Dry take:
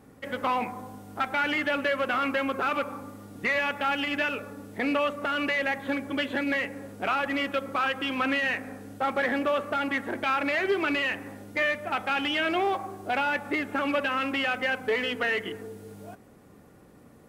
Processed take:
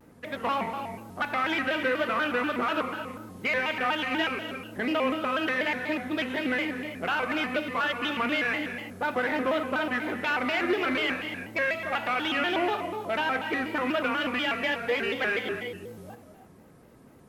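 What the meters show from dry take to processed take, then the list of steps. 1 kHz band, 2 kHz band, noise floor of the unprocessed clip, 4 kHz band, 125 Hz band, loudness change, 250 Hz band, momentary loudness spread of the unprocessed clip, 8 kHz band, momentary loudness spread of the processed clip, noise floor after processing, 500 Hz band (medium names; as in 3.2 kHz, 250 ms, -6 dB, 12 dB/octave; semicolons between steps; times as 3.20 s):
-1.0 dB, 0.0 dB, -54 dBFS, +0.5 dB, +0.5 dB, -0.5 dB, 0.0 dB, 10 LU, -0.5 dB, 7 LU, -53 dBFS, -0.5 dB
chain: band-stop 7.5 kHz, Q 16; gated-style reverb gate 370 ms flat, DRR 5.5 dB; vibrato with a chosen wave square 4.1 Hz, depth 160 cents; trim -1.5 dB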